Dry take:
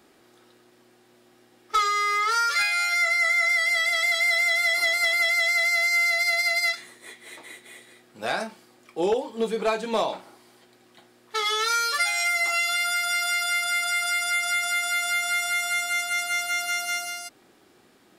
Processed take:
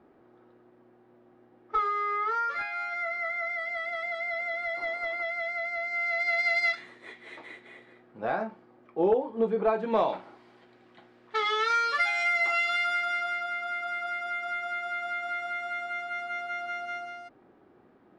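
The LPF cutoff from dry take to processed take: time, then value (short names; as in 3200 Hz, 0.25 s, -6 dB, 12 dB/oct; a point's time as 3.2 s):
5.85 s 1100 Hz
6.54 s 2600 Hz
7.45 s 2600 Hz
8.27 s 1200 Hz
9.72 s 1200 Hz
10.15 s 2500 Hz
12.78 s 2500 Hz
13.49 s 1200 Hz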